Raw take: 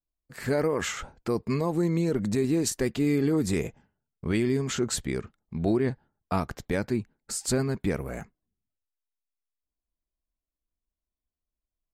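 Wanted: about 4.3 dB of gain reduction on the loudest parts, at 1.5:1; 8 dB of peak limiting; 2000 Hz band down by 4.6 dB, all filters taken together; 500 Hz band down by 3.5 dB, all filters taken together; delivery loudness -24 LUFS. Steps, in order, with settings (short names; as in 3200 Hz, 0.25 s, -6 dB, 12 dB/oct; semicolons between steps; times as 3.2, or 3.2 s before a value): bell 500 Hz -4.5 dB; bell 2000 Hz -5.5 dB; compressor 1.5:1, threshold -34 dBFS; gain +13.5 dB; limiter -13.5 dBFS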